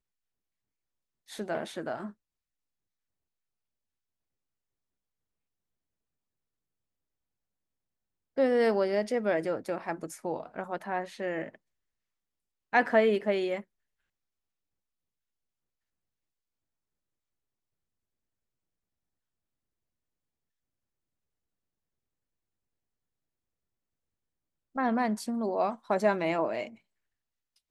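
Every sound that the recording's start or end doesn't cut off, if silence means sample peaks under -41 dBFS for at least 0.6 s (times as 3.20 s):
1.30–2.10 s
8.37–11.55 s
12.73–13.61 s
24.76–26.68 s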